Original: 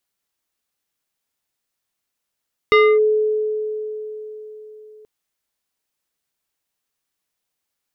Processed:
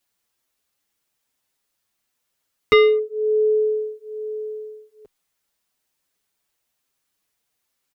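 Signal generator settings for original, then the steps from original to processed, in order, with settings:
FM tone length 2.33 s, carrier 429 Hz, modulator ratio 3.82, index 1.1, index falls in 0.27 s linear, decay 4.14 s, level -8 dB
in parallel at +1.5 dB: compression, threshold -24 dBFS; on the sum: endless flanger 6.7 ms +1.1 Hz

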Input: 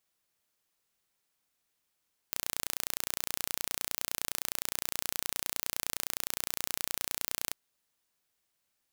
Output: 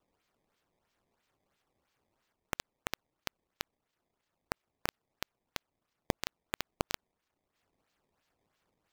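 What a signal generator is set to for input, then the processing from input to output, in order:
pulse train 29.7 per s, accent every 0, -5 dBFS 5.20 s
peak limiter -13 dBFS; decimation with a swept rate 18×, swing 160% 3 Hz

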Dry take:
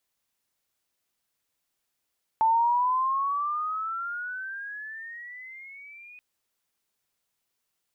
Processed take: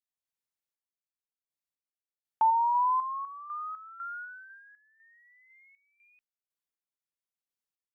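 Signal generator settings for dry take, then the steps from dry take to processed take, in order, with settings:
gliding synth tone sine, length 3.78 s, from 882 Hz, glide +18 st, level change -27 dB, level -18 dB
gate -35 dBFS, range -15 dB; random-step tremolo 4 Hz, depth 85%

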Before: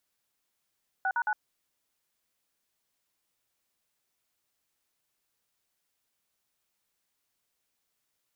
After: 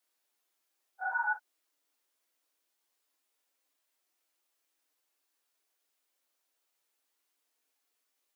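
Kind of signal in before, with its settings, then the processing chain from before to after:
DTMF "6#9", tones 60 ms, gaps 50 ms, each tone -28 dBFS
phase randomisation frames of 100 ms; elliptic high-pass 270 Hz

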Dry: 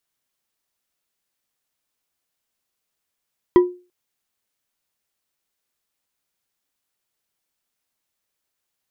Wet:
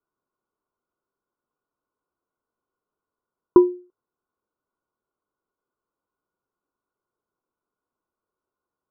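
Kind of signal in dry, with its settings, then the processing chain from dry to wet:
glass hit bar, length 0.34 s, lowest mode 358 Hz, decay 0.33 s, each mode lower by 10.5 dB, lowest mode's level -5 dB
in parallel at +2 dB: compression, threshold -22 dBFS; on the sum: rippled Chebyshev low-pass 1.5 kHz, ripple 9 dB

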